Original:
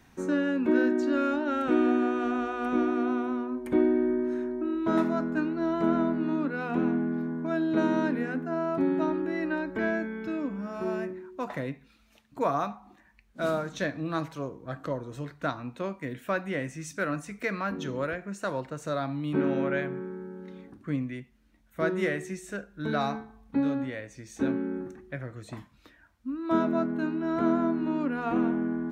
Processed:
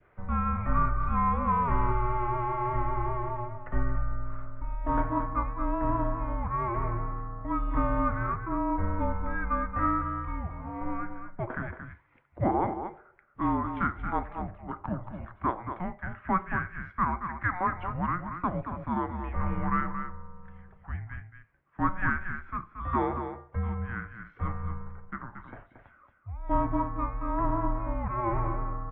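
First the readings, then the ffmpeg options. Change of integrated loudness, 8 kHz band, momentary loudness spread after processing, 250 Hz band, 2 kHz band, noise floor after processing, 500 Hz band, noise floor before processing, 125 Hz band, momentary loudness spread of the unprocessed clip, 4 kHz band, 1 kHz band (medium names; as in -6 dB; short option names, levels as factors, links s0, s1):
-2.0 dB, under -30 dB, 13 LU, -7.0 dB, -1.5 dB, -60 dBFS, -7.5 dB, -61 dBFS, +5.5 dB, 12 LU, under -15 dB, +5.5 dB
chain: -filter_complex "[0:a]highpass=f=300:t=q:w=0.5412,highpass=f=300:t=q:w=1.307,lowpass=f=2600:t=q:w=0.5176,lowpass=f=2600:t=q:w=0.7071,lowpass=f=2600:t=q:w=1.932,afreqshift=-360,adynamicequalizer=threshold=0.00398:dfrequency=1200:dqfactor=1.2:tfrequency=1200:tqfactor=1.2:attack=5:release=100:ratio=0.375:range=3.5:mode=boostabove:tftype=bell,asplit=2[s0][s1];[s1]aecho=0:1:227:0.376[s2];[s0][s2]amix=inputs=2:normalize=0"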